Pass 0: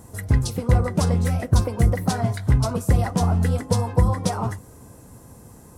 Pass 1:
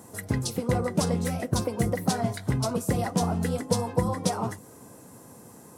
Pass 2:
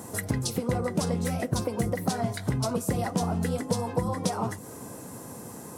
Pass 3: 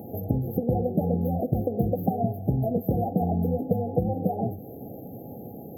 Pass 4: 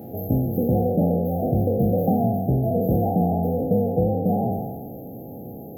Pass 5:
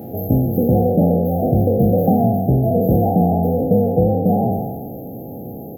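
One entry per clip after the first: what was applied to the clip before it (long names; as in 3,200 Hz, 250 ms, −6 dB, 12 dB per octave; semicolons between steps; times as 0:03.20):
high-pass filter 180 Hz 12 dB per octave; dynamic equaliser 1,300 Hz, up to −4 dB, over −40 dBFS, Q 0.7
downward compressor 2.5 to 1, threshold −35 dBFS, peak gain reduction 11.5 dB; level +7 dB
brick-wall band-stop 850–12,000 Hz; backwards echo 504 ms −23.5 dB; level +3 dB
peak hold with a decay on every bin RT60 1.50 s
far-end echo of a speakerphone 120 ms, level −26 dB; level +5.5 dB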